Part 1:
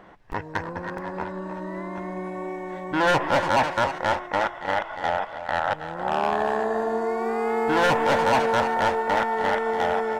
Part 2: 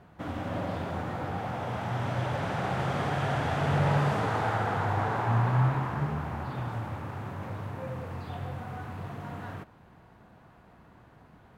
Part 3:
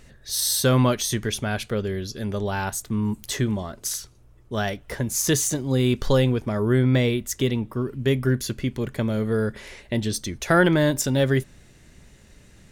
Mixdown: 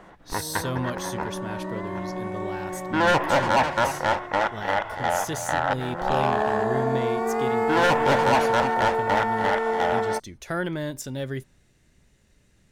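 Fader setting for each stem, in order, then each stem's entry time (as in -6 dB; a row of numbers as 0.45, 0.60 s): +0.5, -19.5, -10.5 dB; 0.00, 0.00, 0.00 s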